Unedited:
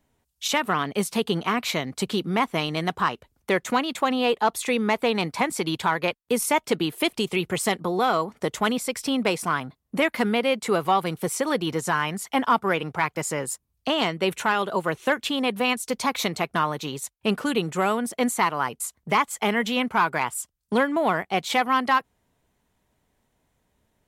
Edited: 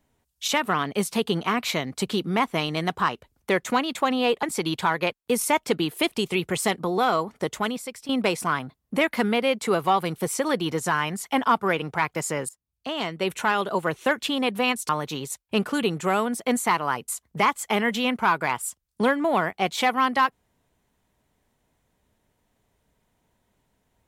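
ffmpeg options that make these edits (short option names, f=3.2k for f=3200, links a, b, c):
-filter_complex "[0:a]asplit=5[a][b][c][d][e];[a]atrim=end=4.432[f];[b]atrim=start=5.438:end=9.1,asetpts=PTS-STARTPTS,afade=t=out:st=2.932:d=0.73:silence=0.199526[g];[c]atrim=start=9.1:end=13.5,asetpts=PTS-STARTPTS,afade=t=in:d=0.004:c=hsin:silence=0.199526,afade=t=out:st=4.396:d=0.004:c=hsin:silence=0.0891251[h];[d]atrim=start=13.5:end=15.902,asetpts=PTS-STARTPTS,afade=t=in:d=1.01:silence=0.0891251[i];[e]atrim=start=16.608[j];[g][h][i]concat=n=3:v=0:a=1[k];[f][k]acrossfade=d=0.004:c1=hsin:c2=hsin[l];[l][j]acrossfade=d=0.004:c1=hsin:c2=hsin"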